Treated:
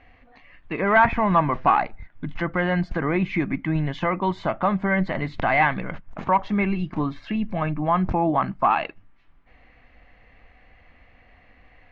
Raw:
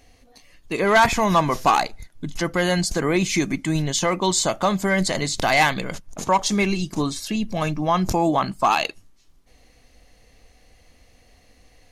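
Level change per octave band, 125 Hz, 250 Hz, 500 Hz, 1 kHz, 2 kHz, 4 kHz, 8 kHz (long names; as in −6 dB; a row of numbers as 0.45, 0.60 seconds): −0.5 dB, −1.0 dB, −3.0 dB, −0.5 dB, −1.5 dB, −15.0 dB, below −35 dB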